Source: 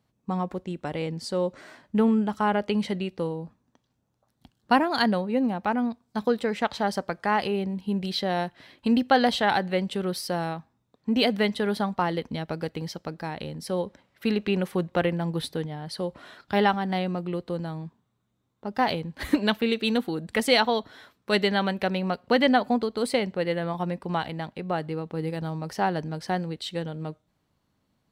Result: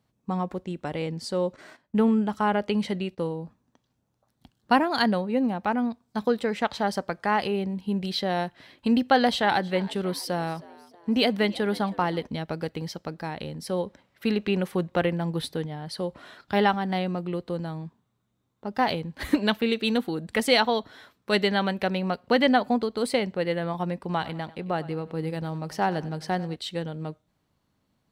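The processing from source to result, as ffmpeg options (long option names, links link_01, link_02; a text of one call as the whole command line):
ffmpeg -i in.wav -filter_complex "[0:a]asettb=1/sr,asplit=3[link_01][link_02][link_03];[link_01]atrim=end=1.564[link_04];[link_02]atrim=start=1.56:end=3.36,asetpts=PTS-STARTPTS,afade=type=in:duration=0.004:curve=qsin,afade=type=out:start_time=1.796:duration=0.004:curve=qsin,agate=range=-13dB:threshold=-49dB:ratio=16:release=100:detection=peak[link_05];[link_03]atrim=start=3.356[link_06];[link_04][link_05]acrossfade=duration=0.004:curve1=hsin:curve2=qsin[link_07];[link_07][link_06]acrossfade=duration=0.004:curve1=qsin:curve2=hsin,asettb=1/sr,asplit=3[link_08][link_09][link_10];[link_08]atrim=end=9.104[link_11];[link_09]atrim=start=9.1:end=12.27,asetpts=PTS-STARTPTS,afade=type=in:duration=0.004:curve=qsin,afade=type=out:start_time=3.166:duration=0.004:curve=qsin,asplit=4[link_12][link_13][link_14][link_15];[link_13]adelay=318,afreqshift=85,volume=-21dB[link_16];[link_14]adelay=636,afreqshift=170,volume=-27.6dB[link_17];[link_15]adelay=954,afreqshift=255,volume=-34.1dB[link_18];[link_12][link_16][link_17][link_18]amix=inputs=4:normalize=0,atrim=end_sample=139797[link_19];[link_10]atrim=start=12.266[link_20];[link_11][link_19]acrossfade=duration=0.004:curve1=hsin:curve2=qsin[link_21];[link_21][link_20]acrossfade=duration=0.004:curve1=qsin:curve2=hsin,asettb=1/sr,asplit=3[link_22][link_23][link_24];[link_22]atrim=end=23.994[link_25];[link_23]atrim=start=23.99:end=26.56,asetpts=PTS-STARTPTS,afade=type=in:duration=0.004:curve=qsin,afade=type=out:start_time=2.566:duration=0.004:curve=qsin,aecho=1:1:96|192|288|384:0.126|0.0541|0.0233|0.01,atrim=end_sample=113337[link_26];[link_24]atrim=start=26.556[link_27];[link_25][link_26]acrossfade=duration=0.004:curve1=hsin:curve2=qsin[link_28];[link_28][link_27]acrossfade=duration=0.004:curve1=qsin:curve2=hsin" out.wav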